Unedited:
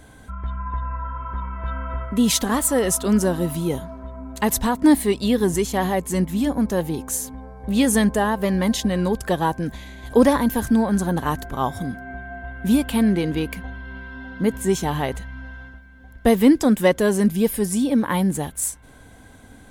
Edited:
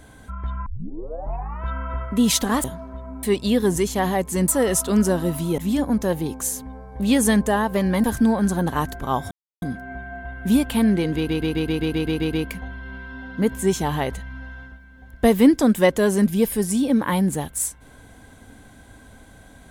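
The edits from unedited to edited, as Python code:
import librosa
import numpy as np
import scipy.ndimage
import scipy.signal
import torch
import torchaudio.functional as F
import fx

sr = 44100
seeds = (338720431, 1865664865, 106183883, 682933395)

y = fx.edit(x, sr, fx.tape_start(start_s=0.66, length_s=0.98),
    fx.move(start_s=2.64, length_s=1.1, to_s=6.26),
    fx.cut(start_s=4.33, length_s=0.68),
    fx.cut(start_s=8.72, length_s=1.82),
    fx.insert_silence(at_s=11.81, length_s=0.31),
    fx.stutter(start_s=13.35, slice_s=0.13, count=10), tone=tone)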